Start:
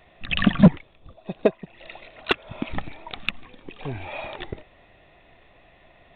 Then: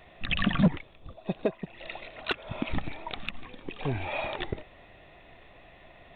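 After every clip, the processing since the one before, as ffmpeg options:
ffmpeg -i in.wav -af "alimiter=limit=-17.5dB:level=0:latency=1:release=69,volume=1.5dB" out.wav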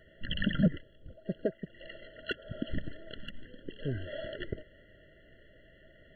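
ffmpeg -i in.wav -af "afftfilt=real='re*eq(mod(floor(b*sr/1024/680),2),0)':imag='im*eq(mod(floor(b*sr/1024/680),2),0)':win_size=1024:overlap=0.75,volume=-3.5dB" out.wav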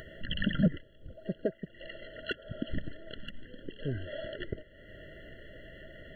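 ffmpeg -i in.wav -af "acompressor=mode=upward:threshold=-38dB:ratio=2.5" out.wav

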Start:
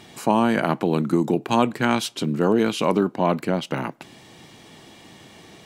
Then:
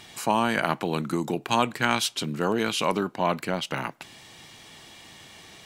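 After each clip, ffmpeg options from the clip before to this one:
ffmpeg -i in.wav -af "equalizer=frequency=270:width=0.38:gain=-10.5,volume=2.5dB" out.wav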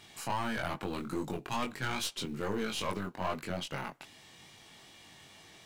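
ffmpeg -i in.wav -filter_complex "[0:a]asplit=2[link_01][link_02];[link_02]acrusher=bits=4:mode=log:mix=0:aa=0.000001,volume=-8dB[link_03];[link_01][link_03]amix=inputs=2:normalize=0,aeval=exprs='(tanh(7.94*val(0)+0.5)-tanh(0.5))/7.94':channel_layout=same,flanger=delay=20:depth=3:speed=2.4,volume=-5.5dB" out.wav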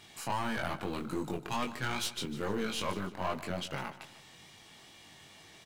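ffmpeg -i in.wav -af "aecho=1:1:151|302|453|604:0.178|0.0694|0.027|0.0105" out.wav

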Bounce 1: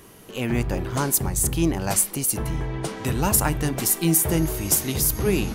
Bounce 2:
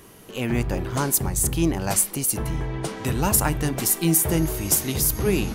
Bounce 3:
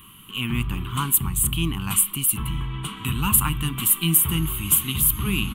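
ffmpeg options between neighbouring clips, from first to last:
ffmpeg -i in.wav -af anull out.wav
ffmpeg -i in.wav -af "firequalizer=gain_entry='entry(210,0);entry(580,-28);entry(1100,7);entry(1700,-8);entry(3000,11);entry(5200,-21);entry(8100,0);entry(13000,5)':delay=0.05:min_phase=1" out.wav

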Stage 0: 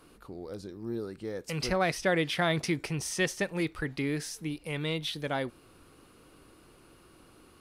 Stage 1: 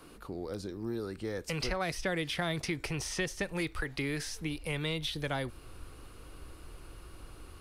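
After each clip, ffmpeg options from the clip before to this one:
ffmpeg -i in.wav -filter_complex "[0:a]asubboost=boost=7:cutoff=74,acrossover=split=330|780|4800[link_01][link_02][link_03][link_04];[link_01]acompressor=threshold=-40dB:ratio=4[link_05];[link_02]acompressor=threshold=-45dB:ratio=4[link_06];[link_03]acompressor=threshold=-40dB:ratio=4[link_07];[link_04]acompressor=threshold=-49dB:ratio=4[link_08];[link_05][link_06][link_07][link_08]amix=inputs=4:normalize=0,volume=4dB" out.wav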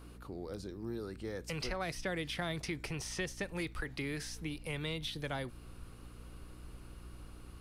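ffmpeg -i in.wav -af "aeval=exprs='val(0)+0.00447*(sin(2*PI*60*n/s)+sin(2*PI*2*60*n/s)/2+sin(2*PI*3*60*n/s)/3+sin(2*PI*4*60*n/s)/4+sin(2*PI*5*60*n/s)/5)':channel_layout=same,volume=-4.5dB" out.wav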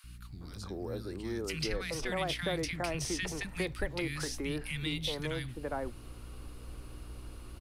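ffmpeg -i in.wav -filter_complex "[0:a]acrossover=split=200|1500[link_01][link_02][link_03];[link_01]adelay=40[link_04];[link_02]adelay=410[link_05];[link_04][link_05][link_03]amix=inputs=3:normalize=0,volume=5dB" out.wav

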